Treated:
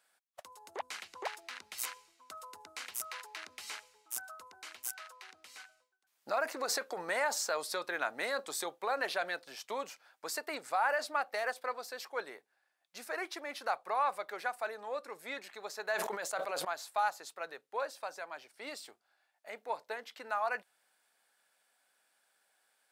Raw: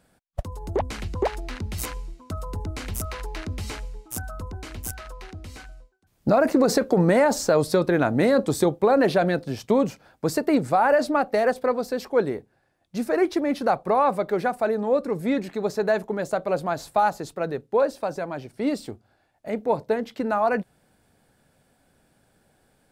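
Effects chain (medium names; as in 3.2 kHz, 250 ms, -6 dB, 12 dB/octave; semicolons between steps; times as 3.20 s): high-pass 1.1 kHz 12 dB/octave; 15.92–16.65 s: decay stretcher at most 25 dB/s; trim -5 dB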